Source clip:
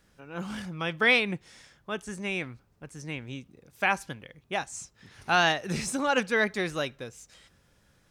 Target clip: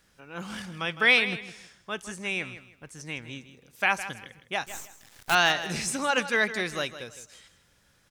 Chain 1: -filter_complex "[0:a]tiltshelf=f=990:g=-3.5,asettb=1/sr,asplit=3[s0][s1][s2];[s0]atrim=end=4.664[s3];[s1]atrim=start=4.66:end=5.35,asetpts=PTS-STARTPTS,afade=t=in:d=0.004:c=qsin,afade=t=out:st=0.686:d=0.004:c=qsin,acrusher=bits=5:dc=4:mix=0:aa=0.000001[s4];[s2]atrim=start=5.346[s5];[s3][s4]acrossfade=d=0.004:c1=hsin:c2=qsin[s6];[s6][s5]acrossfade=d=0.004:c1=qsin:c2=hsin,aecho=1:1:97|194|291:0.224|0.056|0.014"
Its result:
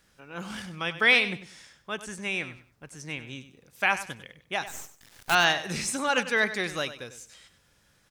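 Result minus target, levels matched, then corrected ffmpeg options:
echo 62 ms early
-filter_complex "[0:a]tiltshelf=f=990:g=-3.5,asettb=1/sr,asplit=3[s0][s1][s2];[s0]atrim=end=4.664[s3];[s1]atrim=start=4.66:end=5.35,asetpts=PTS-STARTPTS,afade=t=in:d=0.004:c=qsin,afade=t=out:st=0.686:d=0.004:c=qsin,acrusher=bits=5:dc=4:mix=0:aa=0.000001[s4];[s2]atrim=start=5.346[s5];[s3][s4]acrossfade=d=0.004:c1=hsin:c2=qsin[s6];[s6][s5]acrossfade=d=0.004:c1=qsin:c2=hsin,aecho=1:1:159|318|477:0.224|0.056|0.014"

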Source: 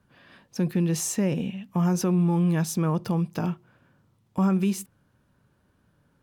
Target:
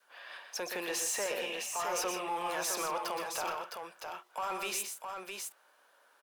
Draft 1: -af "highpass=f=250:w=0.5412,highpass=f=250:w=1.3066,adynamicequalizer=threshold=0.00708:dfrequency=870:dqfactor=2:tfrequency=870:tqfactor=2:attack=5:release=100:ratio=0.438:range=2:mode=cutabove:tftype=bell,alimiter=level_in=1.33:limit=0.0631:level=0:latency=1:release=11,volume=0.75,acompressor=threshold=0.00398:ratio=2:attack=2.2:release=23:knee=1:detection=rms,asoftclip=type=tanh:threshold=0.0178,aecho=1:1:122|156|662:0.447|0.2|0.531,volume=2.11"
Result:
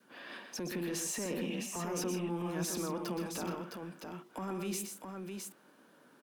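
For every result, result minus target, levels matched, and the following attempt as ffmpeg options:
250 Hz band +12.5 dB; compression: peak gain reduction +6 dB
-af "highpass=f=590:w=0.5412,highpass=f=590:w=1.3066,adynamicequalizer=threshold=0.00708:dfrequency=870:dqfactor=2:tfrequency=870:tqfactor=2:attack=5:release=100:ratio=0.438:range=2:mode=cutabove:tftype=bell,alimiter=level_in=1.33:limit=0.0631:level=0:latency=1:release=11,volume=0.75,acompressor=threshold=0.00398:ratio=2:attack=2.2:release=23:knee=1:detection=rms,asoftclip=type=tanh:threshold=0.0178,aecho=1:1:122|156|662:0.447|0.2|0.531,volume=2.11"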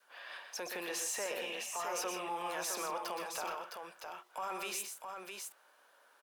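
compression: peak gain reduction +5 dB
-af "highpass=f=590:w=0.5412,highpass=f=590:w=1.3066,adynamicequalizer=threshold=0.00708:dfrequency=870:dqfactor=2:tfrequency=870:tqfactor=2:attack=5:release=100:ratio=0.438:range=2:mode=cutabove:tftype=bell,alimiter=level_in=1.33:limit=0.0631:level=0:latency=1:release=11,volume=0.75,acompressor=threshold=0.0133:ratio=2:attack=2.2:release=23:knee=1:detection=rms,asoftclip=type=tanh:threshold=0.0178,aecho=1:1:122|156|662:0.447|0.2|0.531,volume=2.11"

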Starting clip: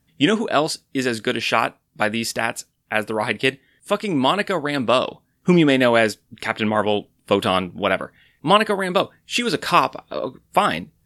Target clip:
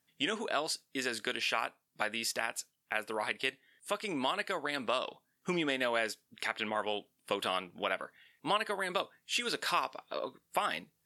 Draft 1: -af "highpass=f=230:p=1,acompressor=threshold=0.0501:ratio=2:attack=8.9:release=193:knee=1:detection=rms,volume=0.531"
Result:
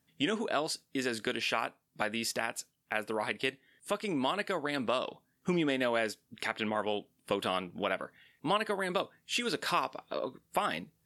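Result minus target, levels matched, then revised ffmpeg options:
250 Hz band +4.0 dB
-af "highpass=f=770:p=1,acompressor=threshold=0.0501:ratio=2:attack=8.9:release=193:knee=1:detection=rms,volume=0.531"

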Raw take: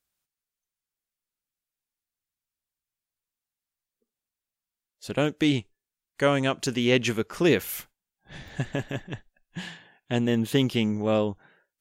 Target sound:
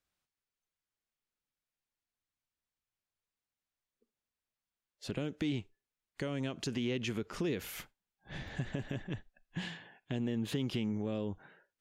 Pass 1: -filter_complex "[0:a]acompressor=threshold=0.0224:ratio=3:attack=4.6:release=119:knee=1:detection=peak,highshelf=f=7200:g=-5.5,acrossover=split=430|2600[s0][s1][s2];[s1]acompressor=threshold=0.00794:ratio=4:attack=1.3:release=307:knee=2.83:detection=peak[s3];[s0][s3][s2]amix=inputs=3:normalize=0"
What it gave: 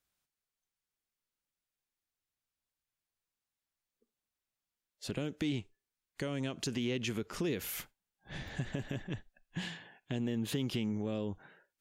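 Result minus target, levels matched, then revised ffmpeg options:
8 kHz band +4.0 dB
-filter_complex "[0:a]acompressor=threshold=0.0224:ratio=3:attack=4.6:release=119:knee=1:detection=peak,highshelf=f=7200:g=-14,acrossover=split=430|2600[s0][s1][s2];[s1]acompressor=threshold=0.00794:ratio=4:attack=1.3:release=307:knee=2.83:detection=peak[s3];[s0][s3][s2]amix=inputs=3:normalize=0"

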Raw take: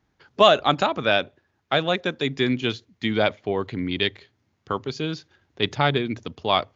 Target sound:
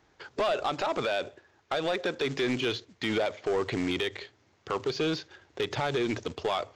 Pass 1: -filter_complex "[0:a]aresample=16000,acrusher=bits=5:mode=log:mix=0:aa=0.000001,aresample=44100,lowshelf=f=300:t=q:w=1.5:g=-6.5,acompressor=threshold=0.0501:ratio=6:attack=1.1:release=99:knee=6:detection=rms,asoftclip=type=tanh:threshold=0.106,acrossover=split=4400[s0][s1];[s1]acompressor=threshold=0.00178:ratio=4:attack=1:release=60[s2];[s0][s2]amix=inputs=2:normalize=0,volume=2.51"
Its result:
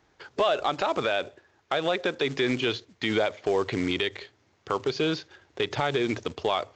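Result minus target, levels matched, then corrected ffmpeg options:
saturation: distortion -14 dB
-filter_complex "[0:a]aresample=16000,acrusher=bits=5:mode=log:mix=0:aa=0.000001,aresample=44100,lowshelf=f=300:t=q:w=1.5:g=-6.5,acompressor=threshold=0.0501:ratio=6:attack=1.1:release=99:knee=6:detection=rms,asoftclip=type=tanh:threshold=0.0316,acrossover=split=4400[s0][s1];[s1]acompressor=threshold=0.00178:ratio=4:attack=1:release=60[s2];[s0][s2]amix=inputs=2:normalize=0,volume=2.51"

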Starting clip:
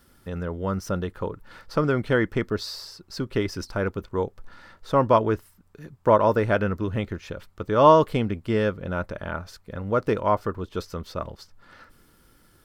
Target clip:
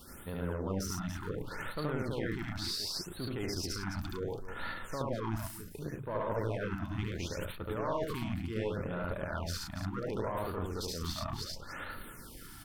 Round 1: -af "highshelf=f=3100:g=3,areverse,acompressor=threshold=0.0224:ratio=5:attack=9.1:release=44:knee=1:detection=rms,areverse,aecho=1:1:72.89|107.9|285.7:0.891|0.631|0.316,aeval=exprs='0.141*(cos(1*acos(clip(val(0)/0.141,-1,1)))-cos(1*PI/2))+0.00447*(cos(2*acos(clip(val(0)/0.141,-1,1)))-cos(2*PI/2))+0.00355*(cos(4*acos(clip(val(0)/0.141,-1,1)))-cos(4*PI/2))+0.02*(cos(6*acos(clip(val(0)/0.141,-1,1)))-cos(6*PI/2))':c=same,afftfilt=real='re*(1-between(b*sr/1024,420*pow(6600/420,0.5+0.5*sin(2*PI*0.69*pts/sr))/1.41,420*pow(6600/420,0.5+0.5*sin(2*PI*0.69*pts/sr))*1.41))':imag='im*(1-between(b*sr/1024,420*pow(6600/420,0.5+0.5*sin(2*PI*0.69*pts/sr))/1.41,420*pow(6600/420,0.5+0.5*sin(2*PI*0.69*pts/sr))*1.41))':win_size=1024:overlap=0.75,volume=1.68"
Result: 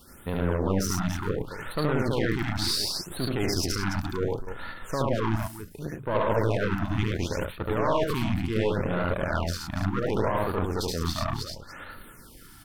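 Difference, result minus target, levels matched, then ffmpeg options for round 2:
compression: peak gain reduction -9 dB
-af "highshelf=f=3100:g=3,areverse,acompressor=threshold=0.00596:ratio=5:attack=9.1:release=44:knee=1:detection=rms,areverse,aecho=1:1:72.89|107.9|285.7:0.891|0.631|0.316,aeval=exprs='0.141*(cos(1*acos(clip(val(0)/0.141,-1,1)))-cos(1*PI/2))+0.00447*(cos(2*acos(clip(val(0)/0.141,-1,1)))-cos(2*PI/2))+0.00355*(cos(4*acos(clip(val(0)/0.141,-1,1)))-cos(4*PI/2))+0.02*(cos(6*acos(clip(val(0)/0.141,-1,1)))-cos(6*PI/2))':c=same,afftfilt=real='re*(1-between(b*sr/1024,420*pow(6600/420,0.5+0.5*sin(2*PI*0.69*pts/sr))/1.41,420*pow(6600/420,0.5+0.5*sin(2*PI*0.69*pts/sr))*1.41))':imag='im*(1-between(b*sr/1024,420*pow(6600/420,0.5+0.5*sin(2*PI*0.69*pts/sr))/1.41,420*pow(6600/420,0.5+0.5*sin(2*PI*0.69*pts/sr))*1.41))':win_size=1024:overlap=0.75,volume=1.68"

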